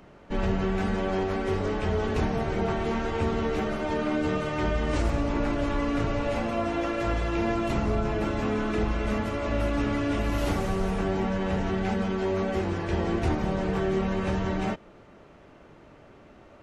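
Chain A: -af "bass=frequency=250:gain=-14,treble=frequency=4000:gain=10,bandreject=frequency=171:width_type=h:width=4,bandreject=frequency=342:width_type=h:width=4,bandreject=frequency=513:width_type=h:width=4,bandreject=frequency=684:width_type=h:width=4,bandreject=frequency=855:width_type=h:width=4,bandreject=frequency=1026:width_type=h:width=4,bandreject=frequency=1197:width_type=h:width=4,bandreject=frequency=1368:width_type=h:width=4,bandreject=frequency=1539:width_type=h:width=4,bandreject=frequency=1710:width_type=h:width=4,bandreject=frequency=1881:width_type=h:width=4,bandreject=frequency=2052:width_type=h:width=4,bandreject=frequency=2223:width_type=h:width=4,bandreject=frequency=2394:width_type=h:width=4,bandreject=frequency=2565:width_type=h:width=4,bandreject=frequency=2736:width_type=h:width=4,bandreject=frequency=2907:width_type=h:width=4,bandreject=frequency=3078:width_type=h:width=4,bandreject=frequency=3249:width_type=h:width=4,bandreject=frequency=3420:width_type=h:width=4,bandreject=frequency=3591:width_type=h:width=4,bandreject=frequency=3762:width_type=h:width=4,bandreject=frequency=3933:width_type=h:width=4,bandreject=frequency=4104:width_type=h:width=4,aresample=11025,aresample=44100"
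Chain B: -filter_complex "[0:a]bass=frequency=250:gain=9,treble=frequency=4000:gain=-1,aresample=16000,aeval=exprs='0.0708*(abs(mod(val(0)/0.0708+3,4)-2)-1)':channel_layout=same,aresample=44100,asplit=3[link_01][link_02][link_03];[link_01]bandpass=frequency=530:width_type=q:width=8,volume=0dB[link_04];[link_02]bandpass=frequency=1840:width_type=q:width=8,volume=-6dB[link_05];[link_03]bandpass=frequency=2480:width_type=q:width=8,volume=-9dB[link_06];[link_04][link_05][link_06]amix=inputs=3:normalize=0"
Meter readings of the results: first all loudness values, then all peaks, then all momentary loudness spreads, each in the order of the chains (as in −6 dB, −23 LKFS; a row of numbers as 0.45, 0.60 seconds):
−31.5, −40.0 LKFS; −18.5, −27.5 dBFS; 2, 2 LU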